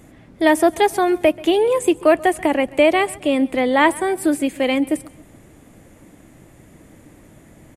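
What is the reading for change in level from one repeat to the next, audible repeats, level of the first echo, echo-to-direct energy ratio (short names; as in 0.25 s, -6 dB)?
-7.0 dB, 2, -22.0 dB, -21.0 dB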